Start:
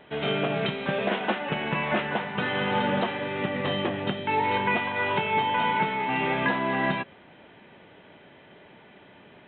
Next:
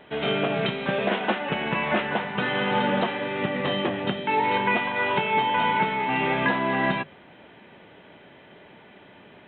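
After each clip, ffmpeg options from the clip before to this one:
ffmpeg -i in.wav -af "bandreject=frequency=50:width_type=h:width=6,bandreject=frequency=100:width_type=h:width=6,bandreject=frequency=150:width_type=h:width=6,volume=2dB" out.wav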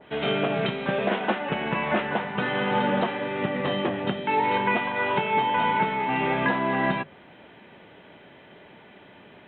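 ffmpeg -i in.wav -af "adynamicequalizer=threshold=0.0141:dfrequency=2000:dqfactor=0.7:tfrequency=2000:tqfactor=0.7:attack=5:release=100:ratio=0.375:range=2:mode=cutabove:tftype=highshelf" out.wav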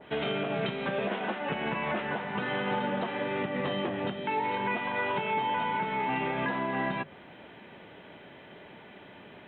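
ffmpeg -i in.wav -af "alimiter=limit=-21.5dB:level=0:latency=1:release=233" out.wav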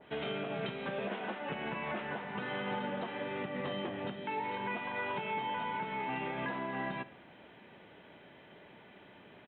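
ffmpeg -i in.wav -af "aecho=1:1:70|140|210|280|350:0.141|0.0777|0.0427|0.0235|0.0129,volume=-6.5dB" out.wav

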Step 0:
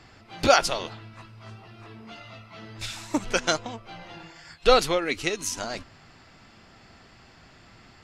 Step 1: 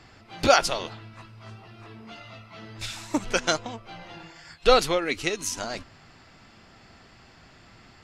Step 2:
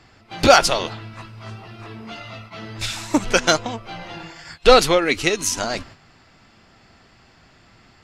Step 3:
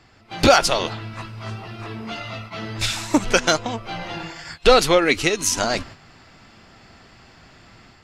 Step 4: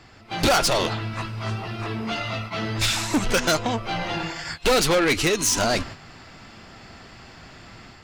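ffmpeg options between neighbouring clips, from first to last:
ffmpeg -i in.wav -af anull out.wav
ffmpeg -i in.wav -af "acontrast=83,agate=range=-8dB:threshold=-41dB:ratio=16:detection=peak,volume=1dB" out.wav
ffmpeg -i in.wav -af "alimiter=limit=-6.5dB:level=0:latency=1:release=295,dynaudnorm=framelen=110:gausssize=5:maxgain=6dB,volume=-2dB" out.wav
ffmpeg -i in.wav -af "asoftclip=type=tanh:threshold=-20dB,volume=4dB" out.wav

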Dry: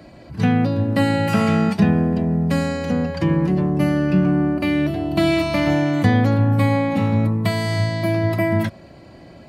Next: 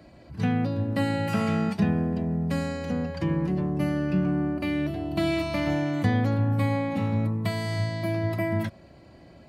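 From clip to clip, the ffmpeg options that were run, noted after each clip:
ffmpeg -i in.wav -af "equalizer=frequency=63:width=1.7:gain=4.5,volume=-8dB" out.wav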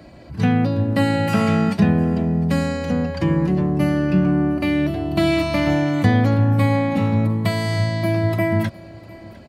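ffmpeg -i in.wav -af "aecho=1:1:704:0.0841,volume=7.5dB" out.wav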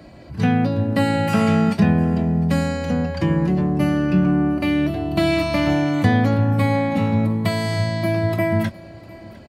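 ffmpeg -i in.wav -filter_complex "[0:a]asplit=2[link_01][link_02];[link_02]adelay=23,volume=-13dB[link_03];[link_01][link_03]amix=inputs=2:normalize=0" out.wav

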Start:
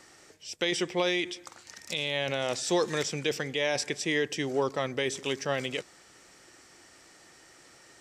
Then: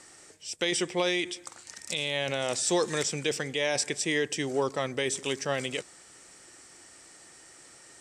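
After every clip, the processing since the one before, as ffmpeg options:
ffmpeg -i in.wav -af "lowpass=12000,equalizer=frequency=8600:width_type=o:width=0.55:gain=11" out.wav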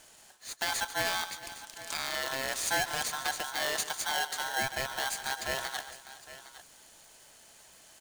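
ffmpeg -i in.wav -filter_complex "[0:a]asplit=2[link_01][link_02];[link_02]aecho=0:1:142|410|809:0.2|0.106|0.168[link_03];[link_01][link_03]amix=inputs=2:normalize=0,aeval=exprs='val(0)*sgn(sin(2*PI*1200*n/s))':channel_layout=same,volume=-4dB" out.wav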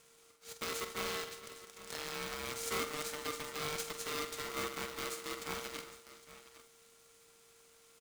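ffmpeg -i in.wav -af "aeval=exprs='if(lt(val(0),0),0.251*val(0),val(0))':channel_layout=same,aecho=1:1:47|77:0.335|0.15,aeval=exprs='val(0)*sgn(sin(2*PI*460*n/s))':channel_layout=same,volume=-5.5dB" out.wav

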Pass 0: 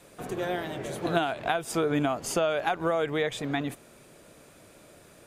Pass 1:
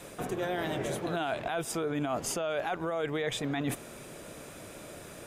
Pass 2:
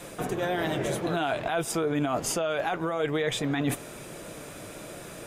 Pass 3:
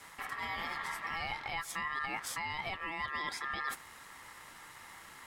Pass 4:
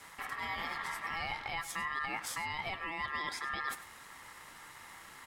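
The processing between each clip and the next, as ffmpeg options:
ffmpeg -i in.wav -af "alimiter=limit=-21dB:level=0:latency=1,areverse,acompressor=threshold=-37dB:ratio=6,areverse,bandreject=frequency=4400:width=15,volume=7.5dB" out.wav
ffmpeg -i in.wav -af "flanger=delay=5.8:depth=1.1:regen=-65:speed=1.2:shape=sinusoidal,volume=8.5dB" out.wav
ffmpeg -i in.wav -af "aeval=exprs='val(0)*sin(2*PI*1500*n/s)':channel_layout=same,volume=-7.5dB" out.wav
ffmpeg -i in.wav -af "aecho=1:1:100:0.168" out.wav

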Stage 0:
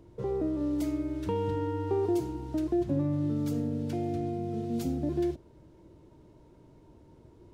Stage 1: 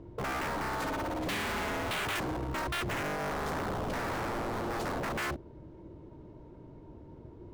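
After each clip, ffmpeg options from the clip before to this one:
ffmpeg -i in.wav -af "adynamicsmooth=sensitivity=6.5:basefreq=2000,aeval=exprs='0.0168*(abs(mod(val(0)/0.0168+3,4)-2)-1)':channel_layout=same,aemphasis=mode=production:type=50kf,volume=6dB" out.wav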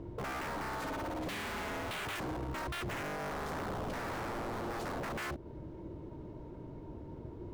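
ffmpeg -i in.wav -af "alimiter=level_in=11.5dB:limit=-24dB:level=0:latency=1:release=137,volume=-11.5dB,volume=3.5dB" out.wav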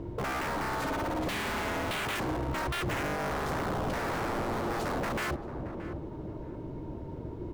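ffmpeg -i in.wav -filter_complex "[0:a]asplit=2[link_01][link_02];[link_02]adelay=624,lowpass=frequency=880:poles=1,volume=-8.5dB,asplit=2[link_03][link_04];[link_04]adelay=624,lowpass=frequency=880:poles=1,volume=0.38,asplit=2[link_05][link_06];[link_06]adelay=624,lowpass=frequency=880:poles=1,volume=0.38,asplit=2[link_07][link_08];[link_08]adelay=624,lowpass=frequency=880:poles=1,volume=0.38[link_09];[link_01][link_03][link_05][link_07][link_09]amix=inputs=5:normalize=0,volume=6dB" out.wav

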